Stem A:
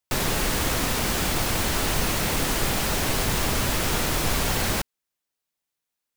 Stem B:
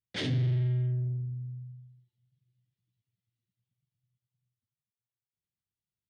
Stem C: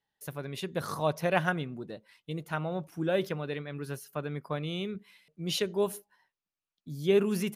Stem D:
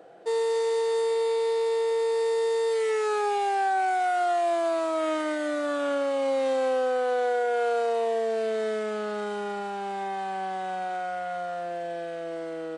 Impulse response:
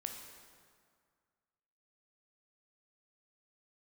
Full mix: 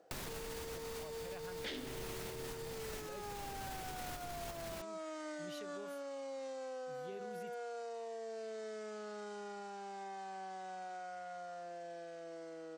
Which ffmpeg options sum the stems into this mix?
-filter_complex "[0:a]alimiter=limit=-22.5dB:level=0:latency=1,volume=-6.5dB[a];[1:a]highpass=f=250:w=0.5412,highpass=f=250:w=1.3066,adelay=1500,volume=2dB[b];[2:a]volume=-17dB,asplit=2[c][d];[3:a]lowpass=f=7k:w=0.5412,lowpass=f=7k:w=1.3066,aexciter=amount=2.9:drive=7.6:freq=4.8k,volume=-14.5dB[e];[d]apad=whole_len=271938[f];[a][f]sidechaincompress=threshold=-55dB:ratio=8:attack=41:release=311[g];[c][e]amix=inputs=2:normalize=0,alimiter=level_in=11.5dB:limit=-24dB:level=0:latency=1:release=148,volume=-11.5dB,volume=0dB[h];[g][b][h]amix=inputs=3:normalize=0,acompressor=threshold=-41dB:ratio=6"

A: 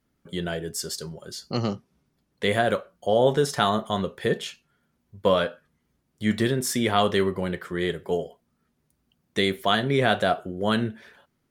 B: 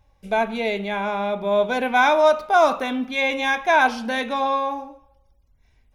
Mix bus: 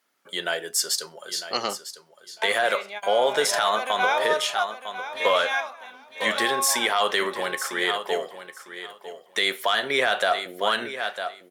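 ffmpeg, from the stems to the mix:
-filter_complex "[0:a]volume=1.5dB,asplit=3[a][b][c];[b]volume=-12.5dB[d];[1:a]adelay=2050,volume=-10.5dB,asplit=2[e][f];[f]volume=-12dB[g];[c]apad=whole_len=352417[h];[e][h]sidechaingate=range=-25dB:threshold=-48dB:ratio=16:detection=peak[i];[d][g]amix=inputs=2:normalize=0,aecho=0:1:952|1904|2856:1|0.16|0.0256[j];[a][i][j]amix=inputs=3:normalize=0,highpass=750,acontrast=65,alimiter=limit=-11dB:level=0:latency=1:release=72"

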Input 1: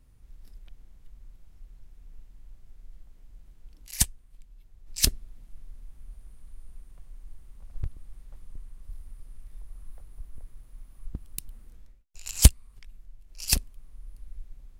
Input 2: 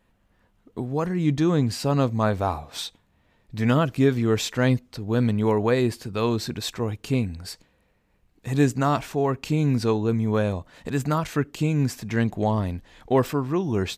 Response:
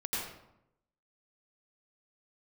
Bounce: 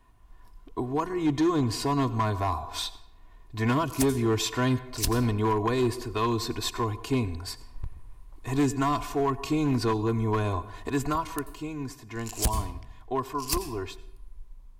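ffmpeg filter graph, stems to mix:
-filter_complex "[0:a]volume=-5dB,asplit=2[a][b];[b]volume=-15dB[c];[1:a]aecho=1:1:2.8:0.85,volume=-3.5dB,afade=t=out:st=11.03:d=0.37:silence=0.334965,asplit=2[d][e];[e]volume=-21dB[f];[2:a]atrim=start_sample=2205[g];[c][f]amix=inputs=2:normalize=0[h];[h][g]afir=irnorm=-1:irlink=0[i];[a][d][i]amix=inputs=3:normalize=0,equalizer=f=1k:w=4.4:g=14.5,acrossover=split=300|3000[j][k][l];[k]acompressor=threshold=-27dB:ratio=3[m];[j][m][l]amix=inputs=3:normalize=0,asoftclip=type=hard:threshold=-19dB"

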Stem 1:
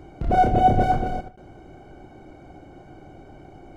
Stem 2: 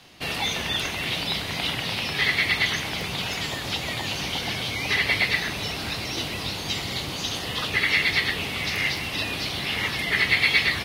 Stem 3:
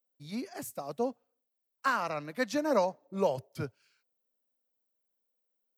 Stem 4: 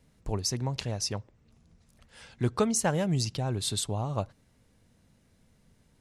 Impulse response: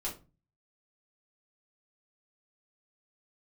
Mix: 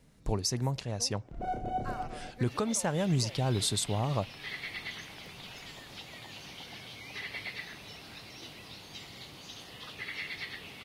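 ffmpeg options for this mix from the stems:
-filter_complex "[0:a]adelay=1100,volume=-17dB[a];[1:a]adelay=2250,volume=-17.5dB[b];[2:a]volume=-15.5dB[c];[3:a]volume=2.5dB[d];[a][b][c][d]amix=inputs=4:normalize=0,equalizer=f=77:t=o:w=0.41:g=-7,alimiter=limit=-19dB:level=0:latency=1:release=328"

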